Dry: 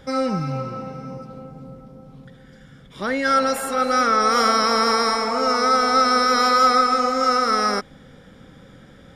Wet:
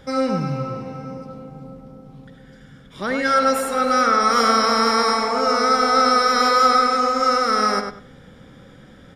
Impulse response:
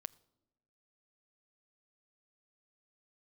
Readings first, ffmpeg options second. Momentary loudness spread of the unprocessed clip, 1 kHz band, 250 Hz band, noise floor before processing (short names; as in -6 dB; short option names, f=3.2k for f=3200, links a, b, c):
15 LU, +1.0 dB, +1.0 dB, -47 dBFS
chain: -filter_complex "[0:a]asplit=2[a][b];[b]adelay=98,lowpass=f=3.4k:p=1,volume=-5.5dB,asplit=2[c][d];[d]adelay=98,lowpass=f=3.4k:p=1,volume=0.23,asplit=2[e][f];[f]adelay=98,lowpass=f=3.4k:p=1,volume=0.23[g];[a][c][e][g]amix=inputs=4:normalize=0"